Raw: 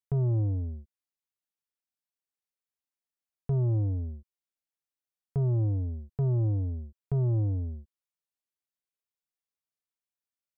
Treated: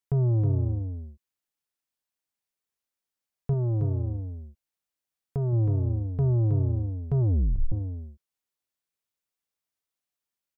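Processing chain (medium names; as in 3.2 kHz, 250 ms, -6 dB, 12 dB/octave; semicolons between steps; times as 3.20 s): 3.53–5.53 s: dynamic bell 170 Hz, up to -5 dB, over -40 dBFS, Q 0.97; delay 319 ms -5.5 dB; 7.20 s: tape stop 0.52 s; trim +3 dB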